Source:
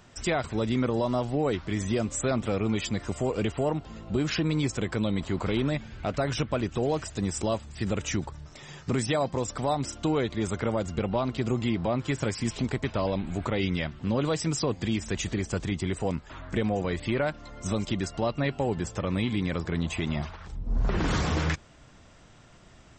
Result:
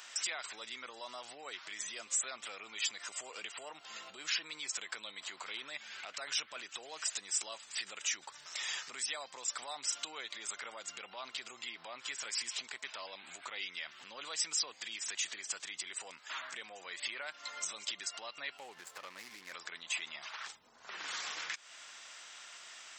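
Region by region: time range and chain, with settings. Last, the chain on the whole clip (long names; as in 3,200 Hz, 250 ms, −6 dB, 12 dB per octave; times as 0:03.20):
0:18.57–0:19.53: running median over 15 samples + highs frequency-modulated by the lows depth 0.13 ms
whole clip: downward compressor 5 to 1, threshold −36 dBFS; brickwall limiter −33 dBFS; Bessel high-pass filter 2,100 Hz, order 2; level +11.5 dB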